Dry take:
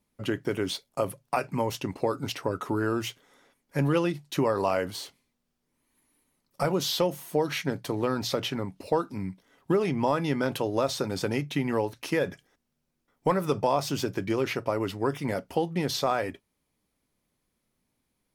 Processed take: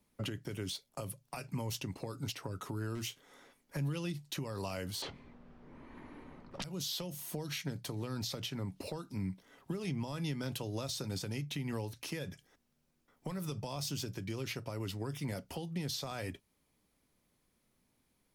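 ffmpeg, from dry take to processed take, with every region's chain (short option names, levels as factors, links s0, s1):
-filter_complex "[0:a]asettb=1/sr,asplit=3[s0][s1][s2];[s0]atrim=end=2.954[s3];[s1]atrim=start=2.95:end=3.77,asetpts=PTS-STARTPTS,afade=t=in:d=0.004:c=qsin,afade=t=out:st=0.816:d=0.004:c=qsin,volume=18.8,asoftclip=hard,volume=0.0531,asplit=2[s4][s5];[s5]adelay=30,volume=0.211[s6];[s4][s6]amix=inputs=2:normalize=0,atrim=end_sample=36162[s7];[s2]atrim=start=3.766[s8];[s3][s7]acrossfade=d=0.004:c1=hsin:c2=qsin[s9];[s9][s8]acrossfade=d=0.004:c1=qsin:c2=hsin,asettb=1/sr,asplit=3[s10][s11][s12];[s10]atrim=end=5.024[s13];[s11]atrim=start=5.02:end=6.64,asetpts=PTS-STARTPTS,afade=t=in:d=0.004:c=qsin,afade=t=out:st=1.616:d=0.004:c=qsin,lowpass=1500,aeval=exprs='0.2*sin(PI/2*8.91*val(0)/0.2)':c=same[s14];[s12]atrim=start=6.636[s15];[s13][s14]acrossfade=d=0.004:c1=hsin:c2=qsin[s16];[s16][s15]acrossfade=d=0.004:c1=qsin:c2=hsin,acrossover=split=180|3000[s17][s18][s19];[s18]acompressor=threshold=0.00891:ratio=4[s20];[s17][s20][s19]amix=inputs=3:normalize=0,alimiter=level_in=2:limit=0.0631:level=0:latency=1:release=327,volume=0.501,volume=1.19"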